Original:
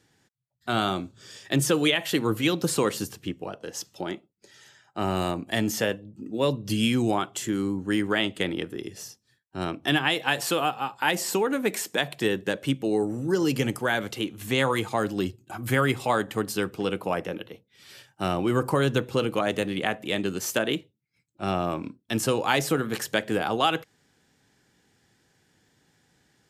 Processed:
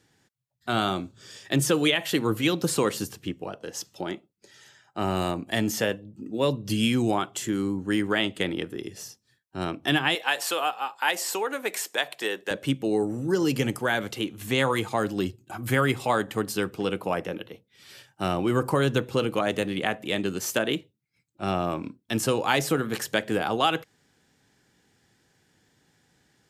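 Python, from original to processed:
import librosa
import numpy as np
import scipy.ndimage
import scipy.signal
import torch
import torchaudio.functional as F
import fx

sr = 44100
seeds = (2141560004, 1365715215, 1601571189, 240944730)

y = fx.highpass(x, sr, hz=510.0, slope=12, at=(10.15, 12.51))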